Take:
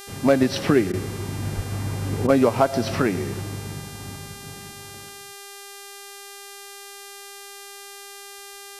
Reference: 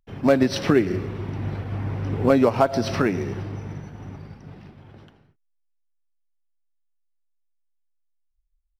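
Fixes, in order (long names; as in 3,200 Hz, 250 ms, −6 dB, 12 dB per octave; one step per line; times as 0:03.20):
hum removal 399.4 Hz, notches 32
0:01.55–0:01.67: high-pass filter 140 Hz 24 dB per octave
repair the gap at 0:00.92/0:02.27, 14 ms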